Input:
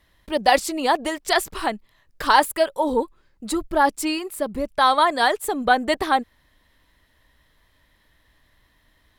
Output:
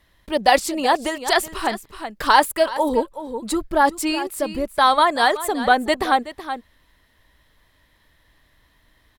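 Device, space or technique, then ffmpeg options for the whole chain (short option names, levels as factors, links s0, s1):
ducked delay: -filter_complex "[0:a]asplit=3[s0][s1][s2];[s1]adelay=375,volume=0.376[s3];[s2]apad=whole_len=421415[s4];[s3][s4]sidechaincompress=threshold=0.0501:ratio=3:attack=36:release=508[s5];[s0][s5]amix=inputs=2:normalize=0,volume=1.19"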